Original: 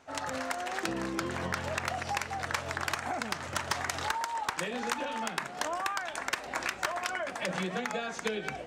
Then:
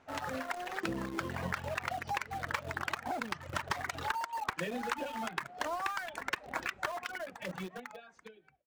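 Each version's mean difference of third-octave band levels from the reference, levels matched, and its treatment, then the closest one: 5.5 dB: fade out at the end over 2.07 s; reverb removal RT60 1.6 s; tone controls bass +3 dB, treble -10 dB; in parallel at -9.5 dB: word length cut 6-bit, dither none; on the sum: trim -3.5 dB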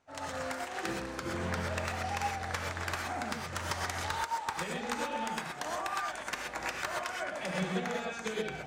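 3.5 dB: bass shelf 130 Hz +6.5 dB; in parallel at -6 dB: saturation -33.5 dBFS, distortion -8 dB; on the sum: gated-style reverb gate 150 ms rising, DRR -0.5 dB; upward expansion 1.5:1, over -48 dBFS; trim -5.5 dB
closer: second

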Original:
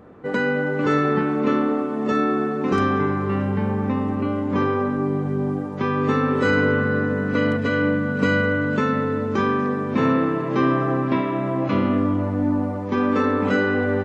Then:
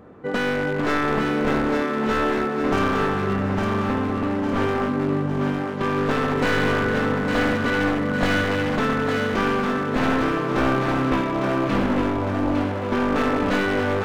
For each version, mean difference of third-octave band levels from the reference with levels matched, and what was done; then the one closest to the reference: 6.0 dB: one-sided wavefolder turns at -19 dBFS; on a send: thinning echo 856 ms, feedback 49%, level -4.5 dB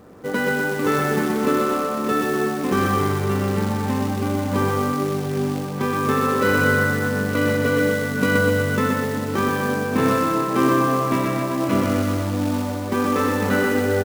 9.0 dB: short-mantissa float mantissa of 2-bit; on a send: feedback delay 124 ms, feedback 58%, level -4 dB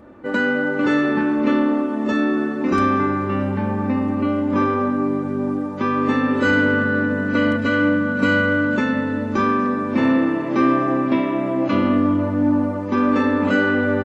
2.5 dB: comb 3.4 ms, depth 62%; in parallel at -11.5 dB: hard clipper -15 dBFS, distortion -14 dB; on the sum: trim -1.5 dB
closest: third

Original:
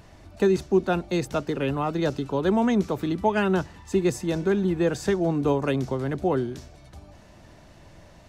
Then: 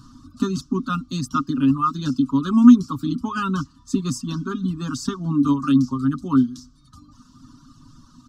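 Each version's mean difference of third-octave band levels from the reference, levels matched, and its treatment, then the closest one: 8.5 dB: dynamic bell 2.6 kHz, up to +7 dB, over -52 dBFS, Q 2.5; comb 7.3 ms, depth 68%; reverb removal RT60 1.1 s; FFT filter 170 Hz 0 dB, 250 Hz +14 dB, 450 Hz -24 dB, 730 Hz -26 dB, 1.2 kHz +11 dB, 2.1 kHz -28 dB, 3.1 kHz -5 dB, 5 kHz +4 dB, 7.3 kHz +1 dB, 12 kHz -5 dB; trim +2 dB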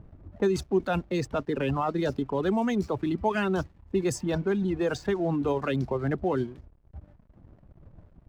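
4.5 dB: reverb removal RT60 1.3 s; level-controlled noise filter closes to 510 Hz, open at -19 dBFS; in parallel at -2.5 dB: compressor with a negative ratio -29 dBFS, ratio -0.5; on the sum: hysteresis with a dead band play -43.5 dBFS; trim -4 dB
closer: second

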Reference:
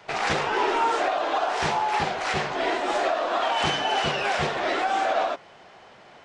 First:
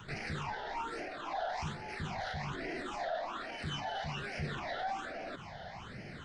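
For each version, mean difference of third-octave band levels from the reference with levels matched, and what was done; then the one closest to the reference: 7.0 dB: tone controls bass +12 dB, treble 0 dB; reverse; compression, threshold -30 dBFS, peak gain reduction 13.5 dB; reverse; peak limiter -32 dBFS, peak gain reduction 11 dB; phase shifter stages 8, 1.2 Hz, lowest notch 320–1100 Hz; trim +4 dB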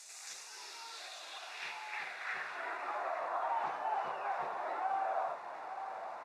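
9.5 dB: one-bit delta coder 64 kbps, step -27.5 dBFS; band-stop 3.1 kHz, Q 5.3; band-pass sweep 7.1 kHz -> 940 Hz, 0.24–3.22 s; on a send: delay 863 ms -10 dB; on the sum: trim -7.5 dB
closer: first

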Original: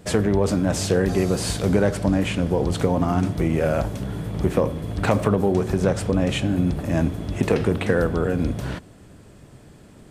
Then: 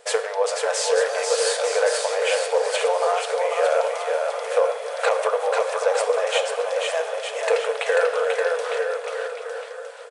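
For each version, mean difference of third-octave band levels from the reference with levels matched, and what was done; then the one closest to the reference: 17.5 dB: FFT band-pass 420–11000 Hz; on a send: bouncing-ball echo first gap 490 ms, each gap 0.85×, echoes 5; on the sum: simulated room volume 2600 m³, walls mixed, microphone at 0.8 m; loudness maximiser +10.5 dB; trim -8 dB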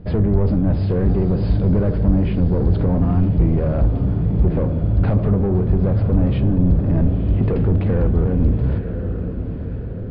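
9.5 dB: echo that smears into a reverb 981 ms, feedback 53%, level -11.5 dB; saturation -19 dBFS, distortion -10 dB; brick-wall FIR low-pass 5.1 kHz; tilt EQ -4.5 dB/octave; trim -3.5 dB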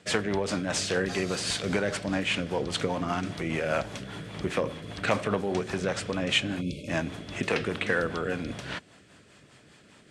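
5.0 dB: frequency weighting ITU-R 468; spectral selection erased 6.61–6.88 s, 620–2100 Hz; tone controls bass +7 dB, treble -13 dB; rotary cabinet horn 5 Hz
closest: third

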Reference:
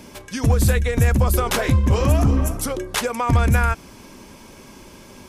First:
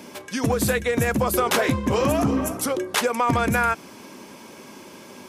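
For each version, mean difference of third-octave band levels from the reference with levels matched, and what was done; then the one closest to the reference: 2.5 dB: high-pass 200 Hz 12 dB/octave; peaking EQ 8 kHz -2.5 dB 2.2 oct; in parallel at -11 dB: saturation -17 dBFS, distortion -16 dB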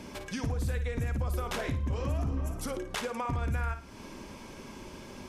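5.5 dB: treble shelf 8.2 kHz -11 dB; compression 3:1, threshold -32 dBFS, peak gain reduction 14.5 dB; flutter echo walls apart 9.5 m, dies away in 0.34 s; trim -2.5 dB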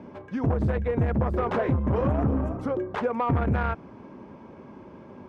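9.0 dB: low-pass 1.1 kHz 12 dB/octave; saturation -16 dBFS, distortion -13 dB; high-pass 100 Hz 12 dB/octave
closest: first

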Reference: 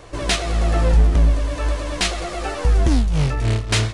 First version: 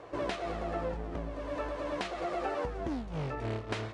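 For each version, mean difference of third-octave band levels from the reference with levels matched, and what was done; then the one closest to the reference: 5.5 dB: bass shelf 400 Hz -6.5 dB; compression, threshold -25 dBFS, peak gain reduction 9 dB; band-pass filter 440 Hz, Q 0.53; trim -1 dB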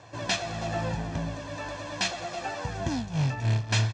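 3.5 dB: elliptic band-pass 100–6800 Hz, stop band 40 dB; comb 1.2 ms, depth 56%; on a send: delay 325 ms -18.5 dB; on the sum: trim -7.5 dB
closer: second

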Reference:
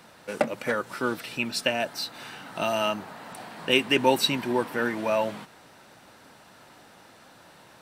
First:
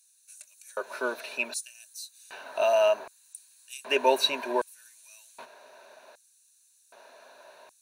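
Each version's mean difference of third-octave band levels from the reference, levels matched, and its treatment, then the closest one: 13.5 dB: rippled EQ curve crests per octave 1.5, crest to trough 10 dB; in parallel at -10 dB: saturation -14.5 dBFS, distortion -14 dB; on the sum: LFO high-pass square 0.65 Hz 550–7900 Hz; short-mantissa float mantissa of 6-bit; trim -6.5 dB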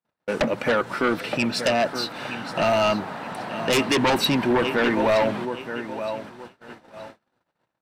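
7.0 dB: low-pass 2.3 kHz 6 dB/octave; feedback delay 921 ms, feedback 27%, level -13.5 dB; gate -48 dBFS, range -50 dB; in parallel at -6 dB: sine folder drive 15 dB, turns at -7 dBFS; on the sum: trim -5 dB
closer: second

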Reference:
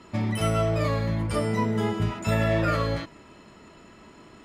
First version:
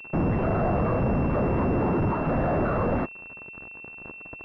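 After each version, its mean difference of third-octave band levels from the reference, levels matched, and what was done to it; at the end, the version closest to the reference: 8.0 dB: whisper effect; fuzz box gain 41 dB, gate -44 dBFS; class-D stage that switches slowly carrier 2.7 kHz; trim -8.5 dB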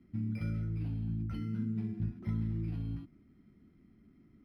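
11.5 dB: elliptic band-stop 270–5800 Hz, stop band 40 dB; decimation joined by straight lines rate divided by 6×; trim -7.5 dB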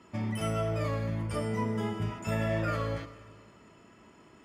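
1.5 dB: high-pass 56 Hz; band-stop 4 kHz, Q 5.5; Schroeder reverb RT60 1.8 s, combs from 25 ms, DRR 12 dB; trim -7 dB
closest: third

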